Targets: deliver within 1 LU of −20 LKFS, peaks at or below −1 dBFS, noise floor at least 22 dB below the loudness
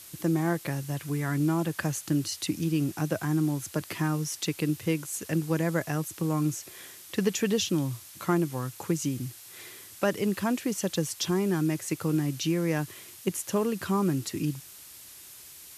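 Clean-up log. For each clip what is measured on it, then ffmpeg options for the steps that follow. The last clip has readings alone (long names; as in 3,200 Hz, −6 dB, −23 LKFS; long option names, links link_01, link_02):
background noise floor −48 dBFS; target noise floor −52 dBFS; integrated loudness −29.5 LKFS; sample peak −12.5 dBFS; target loudness −20.0 LKFS
→ -af "afftdn=noise_reduction=6:noise_floor=-48"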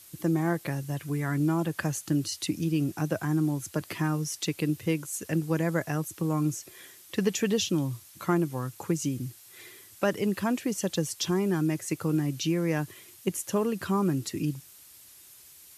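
background noise floor −52 dBFS; integrated loudness −29.5 LKFS; sample peak −12.5 dBFS; target loudness −20.0 LKFS
→ -af "volume=9.5dB"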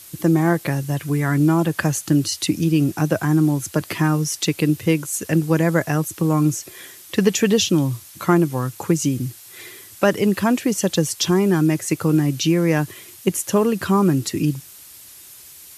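integrated loudness −20.0 LKFS; sample peak −3.0 dBFS; background noise floor −43 dBFS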